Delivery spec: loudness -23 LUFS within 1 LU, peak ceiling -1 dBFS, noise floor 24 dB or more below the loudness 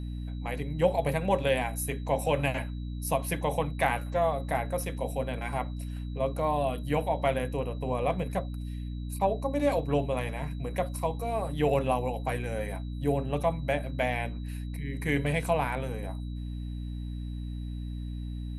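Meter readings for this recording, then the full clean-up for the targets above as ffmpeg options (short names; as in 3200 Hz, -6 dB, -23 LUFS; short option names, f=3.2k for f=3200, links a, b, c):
hum 60 Hz; harmonics up to 300 Hz; hum level -33 dBFS; steady tone 3900 Hz; tone level -58 dBFS; loudness -31.0 LUFS; peak -12.0 dBFS; loudness target -23.0 LUFS
-> -af "bandreject=f=60:t=h:w=6,bandreject=f=120:t=h:w=6,bandreject=f=180:t=h:w=6,bandreject=f=240:t=h:w=6,bandreject=f=300:t=h:w=6"
-af "bandreject=f=3.9k:w=30"
-af "volume=8dB"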